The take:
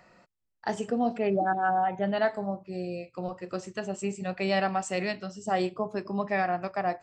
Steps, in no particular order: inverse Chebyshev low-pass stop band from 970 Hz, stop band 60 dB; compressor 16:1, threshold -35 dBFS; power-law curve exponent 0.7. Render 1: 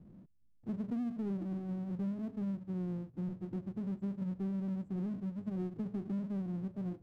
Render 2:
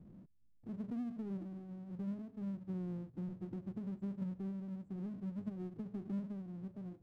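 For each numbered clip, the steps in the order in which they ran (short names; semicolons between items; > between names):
inverse Chebyshev low-pass > compressor > power-law curve; compressor > inverse Chebyshev low-pass > power-law curve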